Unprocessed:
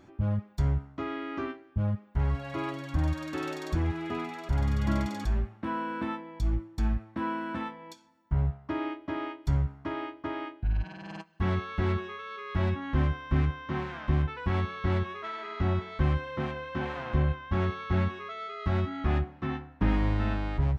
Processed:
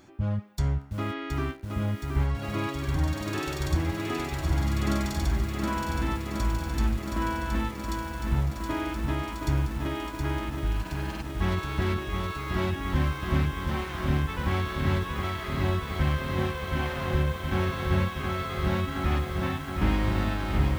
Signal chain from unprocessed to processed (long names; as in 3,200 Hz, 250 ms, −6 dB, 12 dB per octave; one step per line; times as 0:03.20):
high-shelf EQ 3,400 Hz +11 dB
feedback echo at a low word length 720 ms, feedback 80%, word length 8 bits, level −5 dB